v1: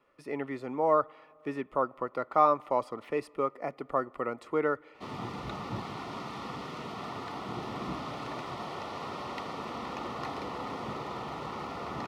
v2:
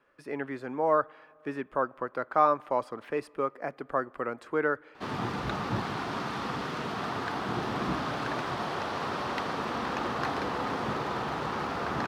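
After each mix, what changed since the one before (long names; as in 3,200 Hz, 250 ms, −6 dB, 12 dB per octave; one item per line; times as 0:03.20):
background +5.5 dB
master: remove Butterworth band-reject 1,600 Hz, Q 4.8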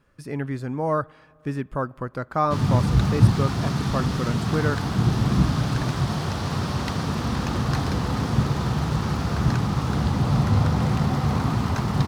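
background: entry −2.50 s
master: remove three-way crossover with the lows and the highs turned down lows −22 dB, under 300 Hz, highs −13 dB, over 3,300 Hz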